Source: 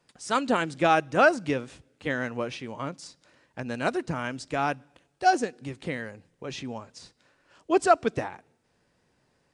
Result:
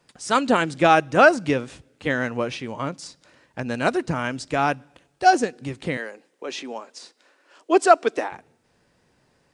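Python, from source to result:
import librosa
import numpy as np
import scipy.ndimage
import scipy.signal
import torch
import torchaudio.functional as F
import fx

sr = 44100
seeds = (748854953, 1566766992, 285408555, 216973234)

y = fx.highpass(x, sr, hz=290.0, slope=24, at=(5.97, 8.32))
y = y * librosa.db_to_amplitude(5.5)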